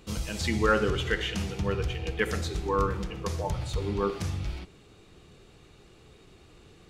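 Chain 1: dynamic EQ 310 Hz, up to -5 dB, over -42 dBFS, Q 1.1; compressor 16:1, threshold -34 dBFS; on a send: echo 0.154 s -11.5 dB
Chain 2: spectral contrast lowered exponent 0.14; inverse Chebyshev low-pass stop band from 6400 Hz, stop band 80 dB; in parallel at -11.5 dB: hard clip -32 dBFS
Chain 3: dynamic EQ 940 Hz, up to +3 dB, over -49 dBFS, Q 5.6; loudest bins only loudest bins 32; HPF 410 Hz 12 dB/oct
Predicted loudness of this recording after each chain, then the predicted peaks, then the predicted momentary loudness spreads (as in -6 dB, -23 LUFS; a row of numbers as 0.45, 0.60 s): -39.0, -37.0, -33.0 LUFS; -23.0, -17.5, -12.5 dBFS; 17, 8, 15 LU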